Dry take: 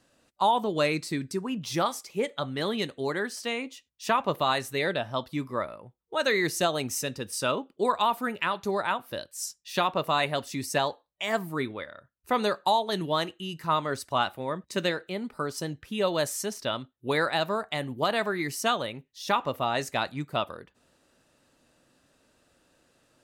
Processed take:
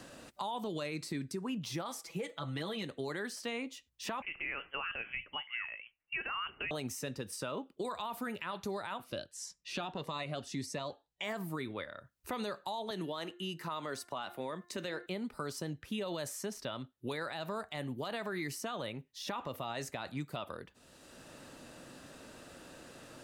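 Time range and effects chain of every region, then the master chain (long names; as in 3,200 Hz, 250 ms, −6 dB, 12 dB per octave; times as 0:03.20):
0:01.98–0:02.84: comb filter 6.1 ms, depth 84% + downward compressor 4 to 1, threshold −30 dBFS
0:04.22–0:06.71: high-pass filter 440 Hz + downward compressor, threshold −28 dBFS + voice inversion scrambler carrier 3,200 Hz
0:09.04–0:11.24: low-pass filter 7,600 Hz + phaser whose notches keep moving one way rising 1.7 Hz
0:12.90–0:15.06: high-pass filter 210 Hz + hum removal 351.8 Hz, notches 6
whole clip: brickwall limiter −24.5 dBFS; low-shelf EQ 180 Hz +3 dB; multiband upward and downward compressor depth 70%; level −5.5 dB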